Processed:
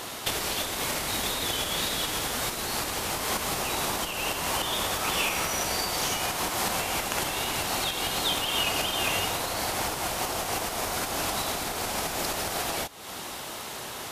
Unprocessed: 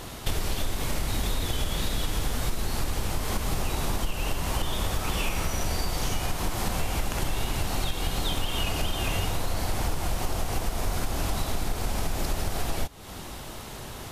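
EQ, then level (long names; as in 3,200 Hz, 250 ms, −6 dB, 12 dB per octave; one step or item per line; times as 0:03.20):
high-pass filter 540 Hz 6 dB per octave
+5.5 dB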